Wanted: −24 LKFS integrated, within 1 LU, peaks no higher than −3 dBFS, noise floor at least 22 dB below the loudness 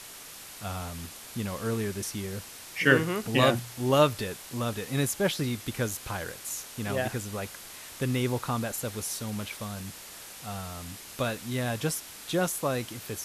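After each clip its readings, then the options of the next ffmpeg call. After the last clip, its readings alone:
background noise floor −45 dBFS; target noise floor −52 dBFS; integrated loudness −30.0 LKFS; sample peak −4.5 dBFS; target loudness −24.0 LKFS
→ -af "afftdn=noise_reduction=7:noise_floor=-45"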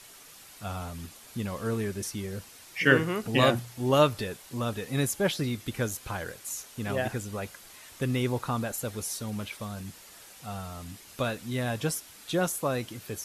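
background noise floor −51 dBFS; target noise floor −52 dBFS
→ -af "afftdn=noise_reduction=6:noise_floor=-51"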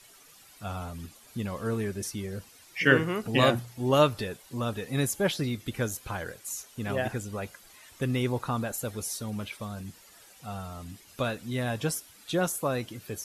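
background noise floor −55 dBFS; integrated loudness −30.0 LKFS; sample peak −5.0 dBFS; target loudness −24.0 LKFS
→ -af "volume=6dB,alimiter=limit=-3dB:level=0:latency=1"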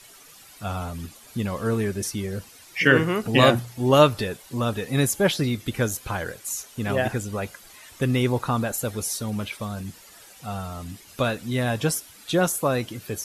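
integrated loudness −24.5 LKFS; sample peak −3.0 dBFS; background noise floor −49 dBFS

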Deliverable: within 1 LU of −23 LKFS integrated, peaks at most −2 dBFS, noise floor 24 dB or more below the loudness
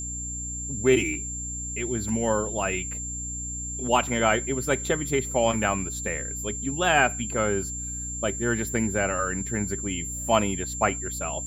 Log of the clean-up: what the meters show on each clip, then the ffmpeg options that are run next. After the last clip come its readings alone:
mains hum 60 Hz; hum harmonics up to 300 Hz; level of the hum −35 dBFS; interfering tone 7,300 Hz; level of the tone −32 dBFS; integrated loudness −26.0 LKFS; sample peak −6.5 dBFS; target loudness −23.0 LKFS
→ -af "bandreject=frequency=60:width_type=h:width=6,bandreject=frequency=120:width_type=h:width=6,bandreject=frequency=180:width_type=h:width=6,bandreject=frequency=240:width_type=h:width=6,bandreject=frequency=300:width_type=h:width=6"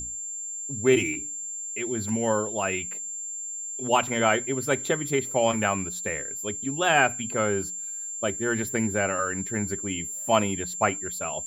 mains hum none found; interfering tone 7,300 Hz; level of the tone −32 dBFS
→ -af "bandreject=frequency=7300:width=30"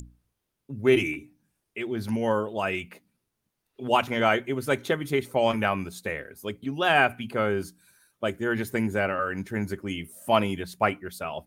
interfering tone none found; integrated loudness −27.0 LKFS; sample peak −7.0 dBFS; target loudness −23.0 LKFS
→ -af "volume=4dB"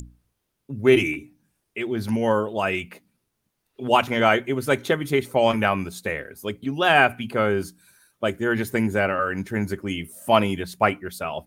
integrated loudness −23.0 LKFS; sample peak −3.0 dBFS; background noise floor −77 dBFS

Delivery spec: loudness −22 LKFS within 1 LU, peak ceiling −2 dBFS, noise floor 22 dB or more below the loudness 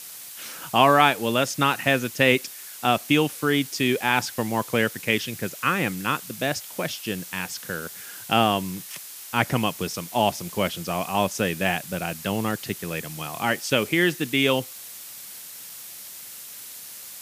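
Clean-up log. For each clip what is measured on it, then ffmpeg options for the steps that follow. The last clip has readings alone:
background noise floor −40 dBFS; target noise floor −46 dBFS; integrated loudness −24.0 LKFS; sample peak −2.0 dBFS; target loudness −22.0 LKFS
→ -af "afftdn=noise_reduction=6:noise_floor=-40"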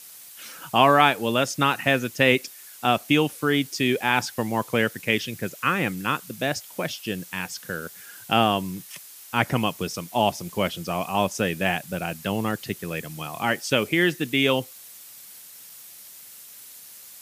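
background noise floor −45 dBFS; target noise floor −46 dBFS
→ -af "afftdn=noise_reduction=6:noise_floor=-45"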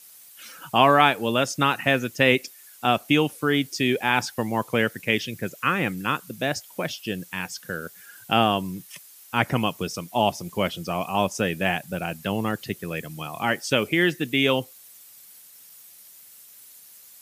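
background noise floor −49 dBFS; integrated loudness −24.0 LKFS; sample peak −2.0 dBFS; target loudness −22.0 LKFS
→ -af "volume=2dB,alimiter=limit=-2dB:level=0:latency=1"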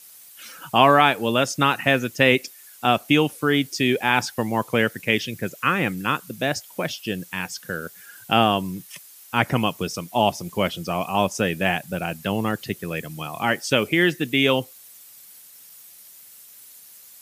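integrated loudness −22.0 LKFS; sample peak −2.0 dBFS; background noise floor −47 dBFS

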